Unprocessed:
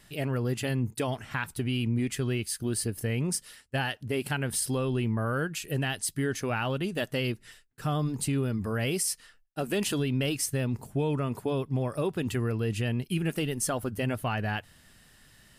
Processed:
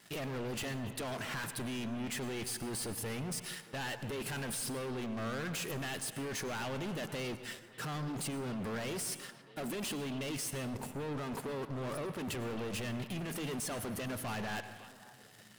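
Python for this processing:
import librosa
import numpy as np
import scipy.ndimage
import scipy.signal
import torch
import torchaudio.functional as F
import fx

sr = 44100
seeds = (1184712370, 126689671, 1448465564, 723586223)

y = scipy.signal.sosfilt(scipy.signal.butter(2, 170.0, 'highpass', fs=sr, output='sos'), x)
y = fx.high_shelf(y, sr, hz=11000.0, db=-7.0)
y = fx.leveller(y, sr, passes=3)
y = fx.over_compress(y, sr, threshold_db=-28.0, ratio=-1.0)
y = np.clip(10.0 ** (31.0 / 20.0) * y, -1.0, 1.0) / 10.0 ** (31.0 / 20.0)
y = fx.vibrato(y, sr, rate_hz=3.2, depth_cents=8.9)
y = fx.echo_stepped(y, sr, ms=271, hz=2800.0, octaves=-1.4, feedback_pct=70, wet_db=-12)
y = fx.rev_plate(y, sr, seeds[0], rt60_s=1.2, hf_ratio=0.4, predelay_ms=85, drr_db=11.5)
y = y * librosa.db_to_amplitude(-6.0)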